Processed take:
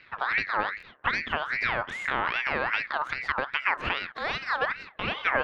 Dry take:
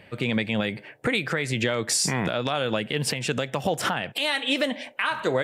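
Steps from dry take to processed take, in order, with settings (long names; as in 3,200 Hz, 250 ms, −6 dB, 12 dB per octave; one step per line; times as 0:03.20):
gain on one half-wave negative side −7 dB
low-pass filter 1,300 Hz 12 dB per octave
buffer that repeats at 0:00.78/0:01.88/0:03.05, samples 1,024, times 1
ring modulator whose carrier an LFO sweeps 1,600 Hz, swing 35%, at 2.5 Hz
level +3.5 dB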